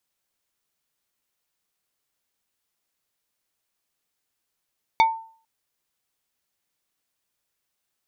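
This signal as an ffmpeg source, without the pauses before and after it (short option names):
-f lavfi -i "aevalsrc='0.282*pow(10,-3*t/0.46)*sin(2*PI*898*t)+0.141*pow(10,-3*t/0.153)*sin(2*PI*2245*t)+0.0708*pow(10,-3*t/0.087)*sin(2*PI*3592*t)+0.0355*pow(10,-3*t/0.067)*sin(2*PI*4490*t)+0.0178*pow(10,-3*t/0.049)*sin(2*PI*5837*t)':d=0.45:s=44100"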